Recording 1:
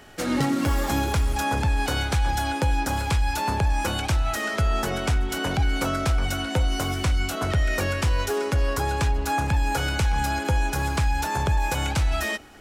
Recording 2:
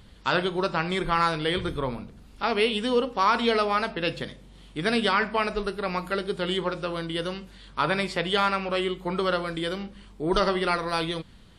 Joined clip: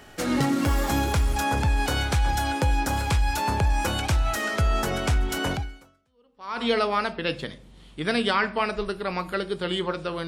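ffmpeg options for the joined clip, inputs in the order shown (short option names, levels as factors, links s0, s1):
-filter_complex "[0:a]apad=whole_dur=10.27,atrim=end=10.27,atrim=end=6.64,asetpts=PTS-STARTPTS[s0];[1:a]atrim=start=2.3:end=7.05,asetpts=PTS-STARTPTS[s1];[s0][s1]acrossfade=d=1.12:c1=exp:c2=exp"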